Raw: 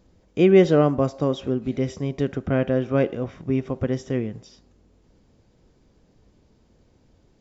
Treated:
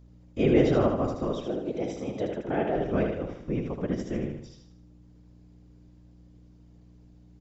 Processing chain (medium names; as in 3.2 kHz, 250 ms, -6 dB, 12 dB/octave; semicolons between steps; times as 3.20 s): 1.44–2.76 s: frequency shift +110 Hz; whisper effect; hum 60 Hz, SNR 21 dB; on a send: feedback delay 77 ms, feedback 43%, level -5 dB; on the sum: trim -7 dB